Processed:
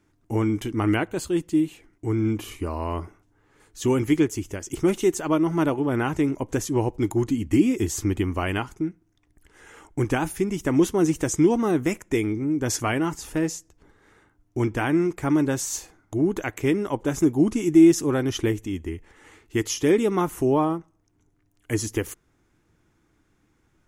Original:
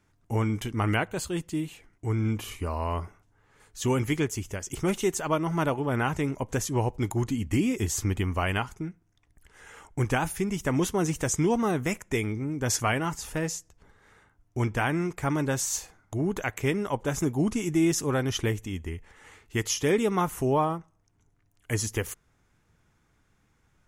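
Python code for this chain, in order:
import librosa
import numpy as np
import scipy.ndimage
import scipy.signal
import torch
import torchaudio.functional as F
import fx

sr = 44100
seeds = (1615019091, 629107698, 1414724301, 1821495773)

y = fx.peak_eq(x, sr, hz=320.0, db=10.5, octaves=0.58)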